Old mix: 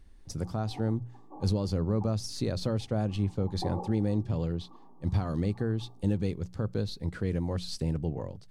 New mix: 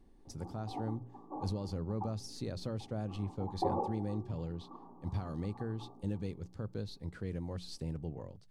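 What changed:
speech -9.0 dB; background +4.5 dB

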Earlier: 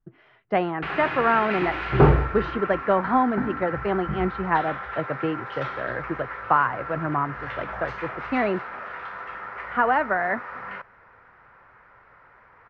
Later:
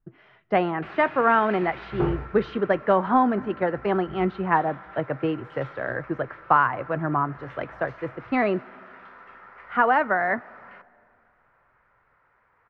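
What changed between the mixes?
background -12.0 dB; reverb: on, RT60 2.5 s

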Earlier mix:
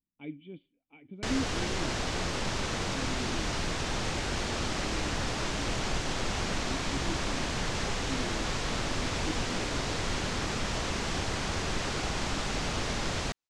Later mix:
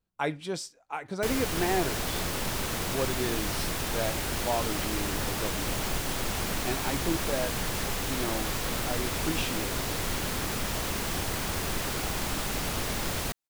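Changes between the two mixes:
speech: remove vocal tract filter i; master: remove LPF 7100 Hz 24 dB/oct

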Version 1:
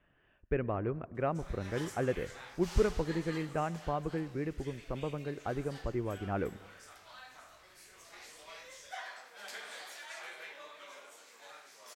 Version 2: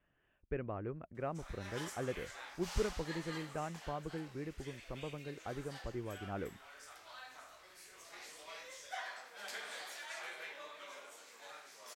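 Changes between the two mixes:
speech -6.5 dB; reverb: off

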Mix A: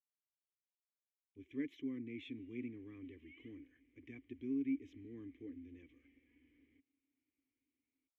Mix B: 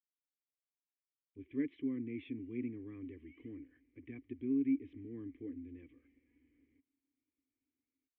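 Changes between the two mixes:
speech +5.5 dB; master: add air absorption 480 m

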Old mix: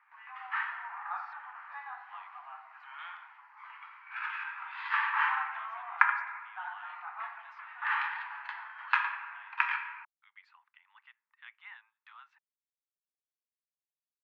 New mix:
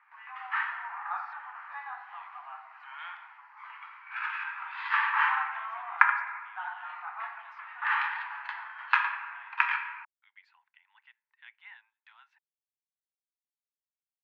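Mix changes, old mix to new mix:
speech: add bell 1200 Hz -12.5 dB 0.27 oct; background +3.0 dB

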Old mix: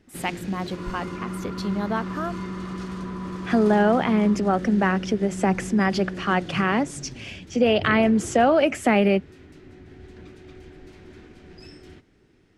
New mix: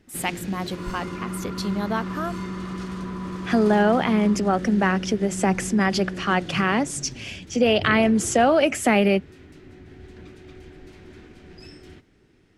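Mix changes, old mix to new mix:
first sound: add tone controls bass +1 dB, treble -6 dB; master: add high shelf 4400 Hz +9.5 dB

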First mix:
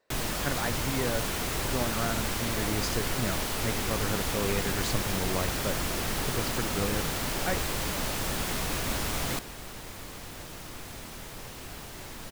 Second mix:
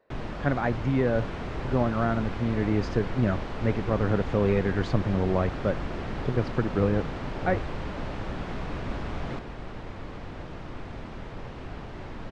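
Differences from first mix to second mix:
speech +9.0 dB; second sound +6.5 dB; master: add tape spacing loss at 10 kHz 38 dB

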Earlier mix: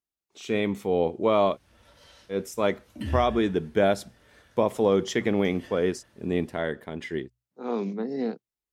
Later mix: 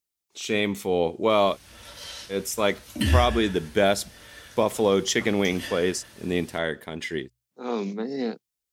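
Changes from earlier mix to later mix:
background +8.5 dB; master: add high shelf 2300 Hz +11.5 dB

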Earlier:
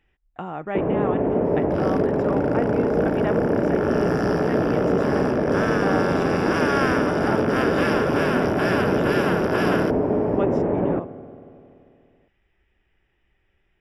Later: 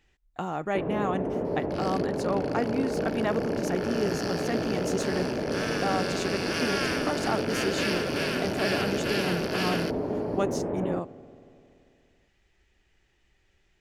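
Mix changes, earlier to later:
first sound -8.5 dB; second sound: add band-pass 2600 Hz, Q 2; master: remove polynomial smoothing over 25 samples

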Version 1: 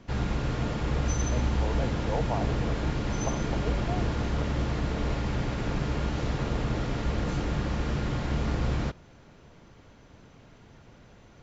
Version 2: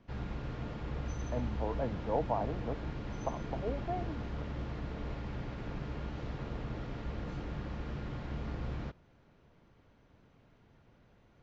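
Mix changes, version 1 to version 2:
background -10.5 dB; master: add air absorption 130 m

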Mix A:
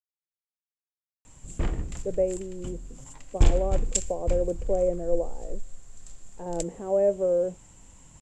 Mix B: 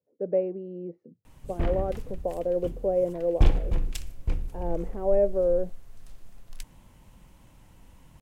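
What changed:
speech: entry -1.85 s; master: remove synth low-pass 7400 Hz, resonance Q 16

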